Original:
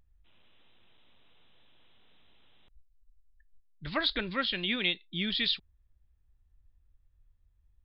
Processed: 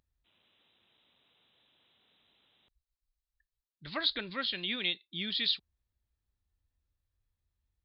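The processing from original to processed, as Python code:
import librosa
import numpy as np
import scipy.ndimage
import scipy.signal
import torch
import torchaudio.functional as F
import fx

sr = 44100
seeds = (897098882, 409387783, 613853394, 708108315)

y = fx.highpass(x, sr, hz=140.0, slope=6)
y = fx.peak_eq(y, sr, hz=4200.0, db=6.5, octaves=0.56)
y = y * librosa.db_to_amplitude(-5.0)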